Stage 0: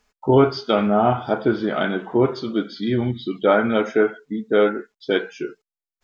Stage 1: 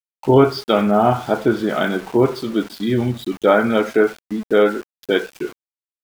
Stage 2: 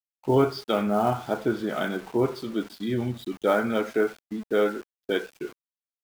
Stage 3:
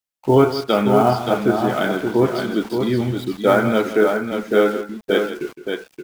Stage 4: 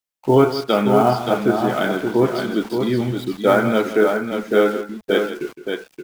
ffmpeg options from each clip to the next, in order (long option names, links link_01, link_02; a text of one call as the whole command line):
ffmpeg -i in.wav -af "aeval=exprs='val(0)*gte(abs(val(0)),0.0158)':channel_layout=same,volume=2.5dB" out.wav
ffmpeg -i in.wav -filter_complex "[0:a]agate=range=-33dB:threshold=-31dB:ratio=3:detection=peak,acrossover=split=590[link_01][link_02];[link_02]acrusher=bits=5:mode=log:mix=0:aa=0.000001[link_03];[link_01][link_03]amix=inputs=2:normalize=0,volume=-8.5dB" out.wav
ffmpeg -i in.wav -af "aecho=1:1:163|575:0.237|0.501,volume=7dB" out.wav
ffmpeg -i in.wav -af "equalizer=frequency=84:width=3.5:gain=-9" out.wav